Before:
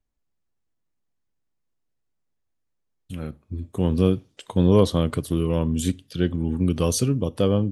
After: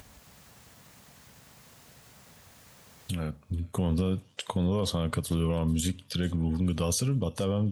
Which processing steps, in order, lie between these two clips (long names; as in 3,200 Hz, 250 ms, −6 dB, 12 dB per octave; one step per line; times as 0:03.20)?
high-pass filter 83 Hz 12 dB per octave
parametric band 330 Hz −10.5 dB 0.67 octaves
brickwall limiter −19 dBFS, peak gain reduction 10.5 dB
upward compression, threshold −26 dBFS
on a send: delay with a high-pass on its return 441 ms, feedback 35%, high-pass 2,100 Hz, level −20.5 dB